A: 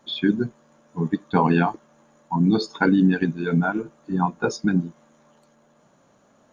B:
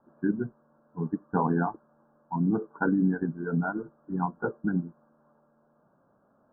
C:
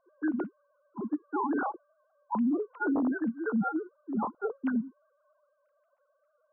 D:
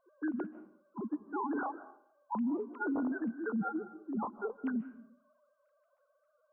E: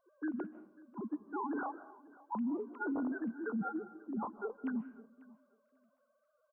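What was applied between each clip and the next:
steep low-pass 1600 Hz 96 dB/oct; gain -7 dB
sine-wave speech; limiter -22 dBFS, peak gain reduction 10.5 dB
in parallel at +1 dB: compressor, threshold -37 dBFS, peak gain reduction 12 dB; on the sum: reverb RT60 0.55 s, pre-delay 0.11 s, DRR 13.5 dB; gain -8 dB
feedback echo 0.542 s, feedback 19%, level -22 dB; gain -2.5 dB

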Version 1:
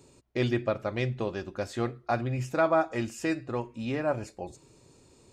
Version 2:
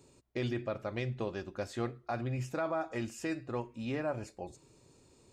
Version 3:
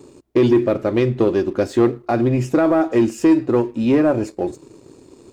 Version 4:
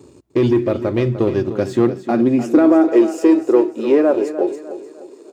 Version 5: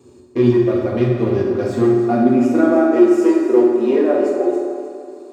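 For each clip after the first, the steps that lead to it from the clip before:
limiter -20.5 dBFS, peak gain reduction 6.5 dB; gain -4.5 dB
bell 330 Hz +13.5 dB 1.3 oct; sample leveller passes 1; gain +8.5 dB
feedback echo 0.301 s, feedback 39%, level -12 dB; high-pass sweep 77 Hz -> 400 Hz, 1.11–3.03; gain -1.5 dB
resonator 360 Hz, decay 0.83 s, mix 70%; reverb RT60 1.8 s, pre-delay 4 ms, DRR -4 dB; gain +3.5 dB

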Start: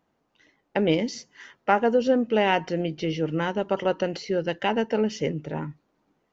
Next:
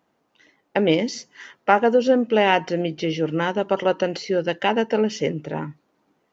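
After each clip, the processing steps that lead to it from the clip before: HPF 170 Hz 6 dB/oct; gain +4.5 dB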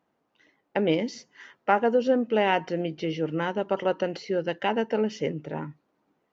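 high shelf 4900 Hz -8.5 dB; gain -5 dB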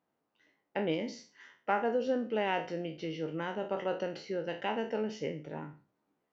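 spectral trails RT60 0.37 s; gain -9 dB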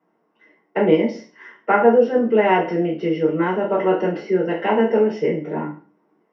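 reverb RT60 0.35 s, pre-delay 3 ms, DRR -5 dB; gain -3 dB

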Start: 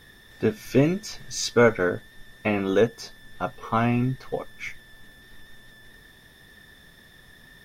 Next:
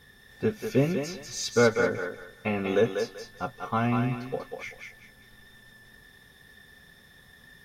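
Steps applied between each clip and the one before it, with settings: notch comb 320 Hz; thinning echo 0.193 s, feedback 28%, high-pass 420 Hz, level -4 dB; gain -3 dB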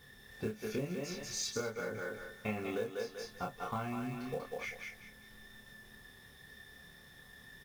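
compressor 8:1, threshold -32 dBFS, peak gain reduction 16 dB; companded quantiser 6-bit; doubler 28 ms -3 dB; gain -4 dB

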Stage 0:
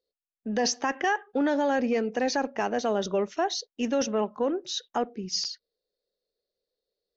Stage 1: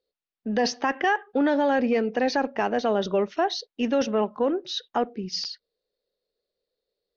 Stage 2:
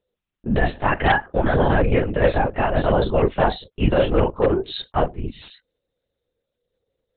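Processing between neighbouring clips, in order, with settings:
LPF 4800 Hz 24 dB/oct; gain +3 dB
chorus voices 6, 1.2 Hz, delay 30 ms, depth 3 ms; wavefolder -17 dBFS; LPC vocoder at 8 kHz whisper; gain +8.5 dB

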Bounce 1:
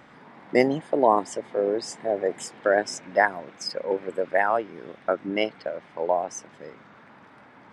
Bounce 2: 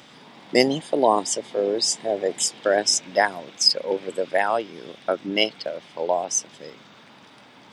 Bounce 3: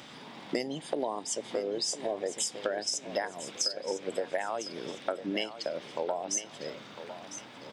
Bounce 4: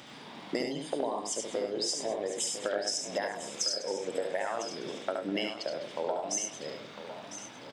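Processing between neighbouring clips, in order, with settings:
HPF 85 Hz; resonant high shelf 2500 Hz +11.5 dB, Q 1.5; notch 4200 Hz, Q 24; gain +1.5 dB
compressor 16:1, threshold -28 dBFS, peak gain reduction 18.5 dB; feedback echo 1.003 s, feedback 33%, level -12 dB; on a send at -21.5 dB: reverb RT60 0.40 s, pre-delay 3 ms
tapped delay 71/100/202 ms -4.5/-9/-16.5 dB; gain -1.5 dB

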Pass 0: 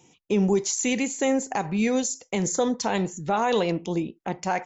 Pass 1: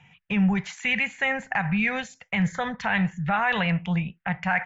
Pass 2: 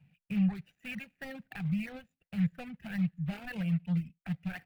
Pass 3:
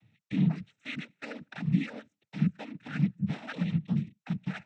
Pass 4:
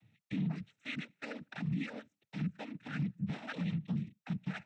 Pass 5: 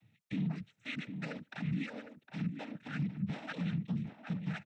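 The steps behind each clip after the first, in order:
EQ curve 180 Hz 0 dB, 320 Hz -29 dB, 720 Hz -6 dB, 1100 Hz -5 dB, 1700 Hz +8 dB, 2800 Hz 0 dB, 5400 Hz -24 dB, 10000 Hz -29 dB; in parallel at +2.5 dB: limiter -24.5 dBFS, peak gain reduction 10 dB
median filter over 41 samples; reverb removal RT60 0.9 s; fifteen-band EQ 160 Hz +5 dB, 400 Hz -8 dB, 1000 Hz -8 dB, 2500 Hz +8 dB, 6300 Hz -7 dB; gain -7.5 dB
noise vocoder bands 12; gain +2.5 dB
limiter -25 dBFS, peak gain reduction 11 dB; gain -2.5 dB
outdoor echo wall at 130 m, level -8 dB

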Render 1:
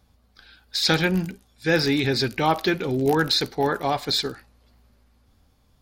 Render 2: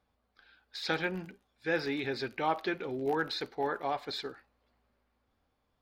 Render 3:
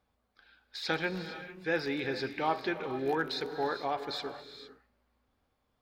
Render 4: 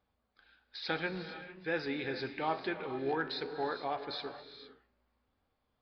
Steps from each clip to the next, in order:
tone controls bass -11 dB, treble -14 dB; gain -8.5 dB
non-linear reverb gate 0.48 s rising, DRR 10 dB
flange 1.1 Hz, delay 9.7 ms, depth 6.7 ms, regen +83%; downsampling 11025 Hz; gain +1.5 dB

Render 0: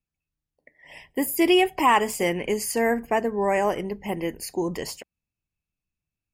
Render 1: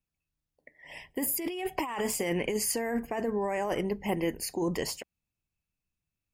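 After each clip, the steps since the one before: negative-ratio compressor -26 dBFS, ratio -1; gain -4 dB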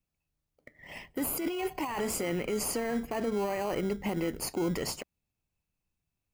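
in parallel at -7.5 dB: sample-rate reducer 1800 Hz, jitter 0%; on the sum: limiter -23 dBFS, peak gain reduction 10 dB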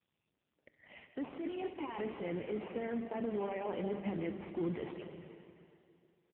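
feedback echo 65 ms, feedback 34%, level -16.5 dB; reverb RT60 2.7 s, pre-delay 0.11 s, DRR 6.5 dB; gain -6 dB; AMR-NB 5.15 kbps 8000 Hz

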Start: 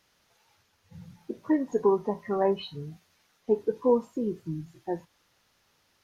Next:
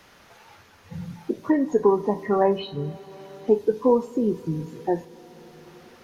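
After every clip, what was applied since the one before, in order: two-slope reverb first 0.29 s, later 3.6 s, from -18 dB, DRR 12 dB; three-band squash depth 40%; gain +6 dB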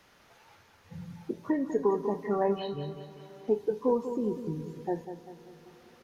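feedback echo 0.196 s, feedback 47%, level -10 dB; gain -8 dB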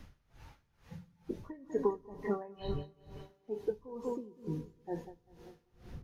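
wind noise 100 Hz -47 dBFS; dB-linear tremolo 2.2 Hz, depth 23 dB; gain -1 dB

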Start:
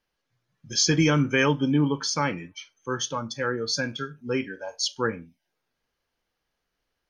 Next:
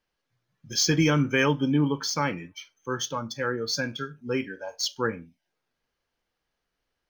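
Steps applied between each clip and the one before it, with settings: median filter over 3 samples; gain -1 dB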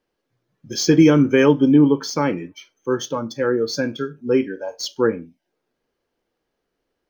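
bell 360 Hz +12.5 dB 1.9 oct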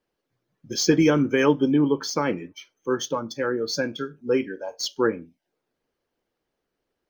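harmonic-percussive split percussive +7 dB; gain -7.5 dB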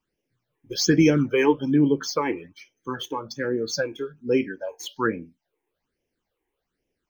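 phaser stages 8, 1.2 Hz, lowest notch 170–1300 Hz; gain +2 dB

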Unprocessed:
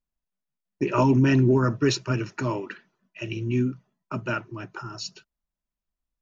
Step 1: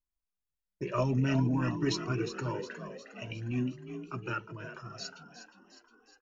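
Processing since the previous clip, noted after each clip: on a send: frequency-shifting echo 0.359 s, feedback 55%, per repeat +36 Hz, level -10 dB; on the sum: cascading flanger rising 0.52 Hz; gain -3.5 dB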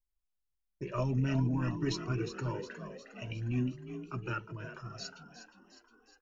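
low shelf 88 Hz +11.5 dB; in parallel at -3 dB: vocal rider within 4 dB 2 s; on the sum: gain -8.5 dB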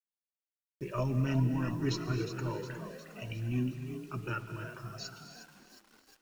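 requantised 10-bit, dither none; non-linear reverb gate 0.31 s rising, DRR 10 dB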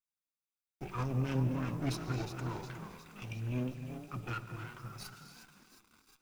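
minimum comb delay 0.81 ms; gain -2 dB

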